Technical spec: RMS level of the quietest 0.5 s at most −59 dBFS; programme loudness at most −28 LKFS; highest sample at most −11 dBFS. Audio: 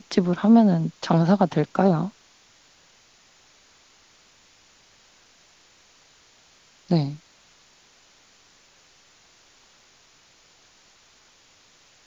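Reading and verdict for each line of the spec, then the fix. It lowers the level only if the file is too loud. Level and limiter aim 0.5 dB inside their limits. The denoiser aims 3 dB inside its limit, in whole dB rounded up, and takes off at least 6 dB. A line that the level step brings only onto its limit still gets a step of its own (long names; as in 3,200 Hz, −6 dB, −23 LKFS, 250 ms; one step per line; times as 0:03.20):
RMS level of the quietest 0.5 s −57 dBFS: out of spec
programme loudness −21.0 LKFS: out of spec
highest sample −5.5 dBFS: out of spec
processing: level −7.5 dB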